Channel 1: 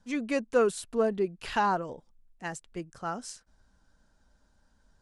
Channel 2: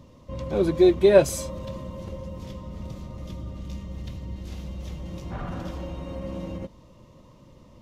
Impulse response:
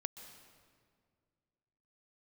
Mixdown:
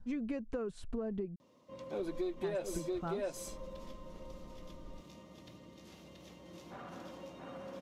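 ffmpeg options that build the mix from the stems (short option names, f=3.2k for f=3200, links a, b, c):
-filter_complex "[0:a]aemphasis=mode=reproduction:type=riaa,acompressor=threshold=-27dB:ratio=6,volume=-3.5dB,asplit=3[a][b][c];[a]atrim=end=1.36,asetpts=PTS-STARTPTS,afade=t=out:st=1.356:d=0.004:c=hsin[d];[b]atrim=start=1.36:end=1.99,asetpts=PTS-STARTPTS,volume=0[e];[c]atrim=start=1.99,asetpts=PTS-STARTPTS,afade=t=in:d=0.004:c=hsin[f];[d][e][f]concat=n=3:v=0:a=1[g];[1:a]highpass=260,asoftclip=type=tanh:threshold=-8.5dB,adelay=1400,volume=-10.5dB,asplit=2[h][i];[i]volume=-3dB,aecho=0:1:680:1[j];[g][h][j]amix=inputs=3:normalize=0,acompressor=threshold=-34dB:ratio=6"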